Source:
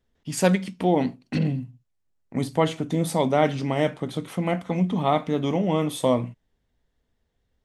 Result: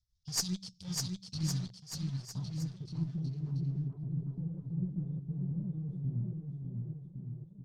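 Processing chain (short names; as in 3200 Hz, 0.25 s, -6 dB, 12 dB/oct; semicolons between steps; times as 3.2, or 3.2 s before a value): inverse Chebyshev band-stop 310–2000 Hz, stop band 50 dB; tremolo 7.6 Hz, depth 57%; in parallel at -9.5 dB: bit-crush 7-bit; on the sum: low-pass sweep 5300 Hz -> 350 Hz, 1.61–2.82; added harmonics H 8 -19 dB, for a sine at -2.5 dBFS; on a send: bouncing-ball echo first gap 0.6 s, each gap 0.85×, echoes 5; on the sum: gain -3 dB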